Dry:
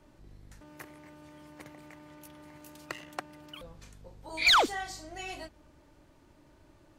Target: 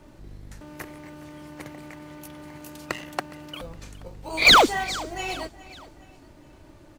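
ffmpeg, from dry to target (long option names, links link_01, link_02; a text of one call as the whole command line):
ffmpeg -i in.wav -filter_complex "[0:a]asplit=2[link_01][link_02];[link_02]acrusher=samples=25:mix=1:aa=0.000001,volume=-12dB[link_03];[link_01][link_03]amix=inputs=2:normalize=0,aecho=1:1:414|828|1242:0.112|0.0471|0.0198,volume=8dB" out.wav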